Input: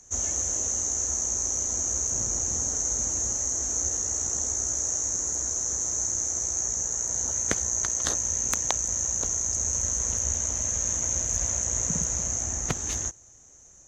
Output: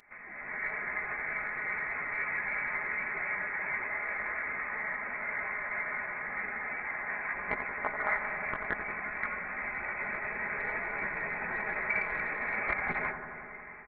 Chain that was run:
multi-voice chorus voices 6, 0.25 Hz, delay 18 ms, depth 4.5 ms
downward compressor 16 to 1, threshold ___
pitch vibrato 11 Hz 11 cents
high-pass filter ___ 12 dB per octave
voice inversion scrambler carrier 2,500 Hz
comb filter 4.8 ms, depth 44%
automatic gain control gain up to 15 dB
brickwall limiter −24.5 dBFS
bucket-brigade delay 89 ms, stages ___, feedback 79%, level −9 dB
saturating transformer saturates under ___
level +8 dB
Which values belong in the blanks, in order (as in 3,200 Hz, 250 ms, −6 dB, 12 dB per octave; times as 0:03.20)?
−38 dBFS, 280 Hz, 1,024, 320 Hz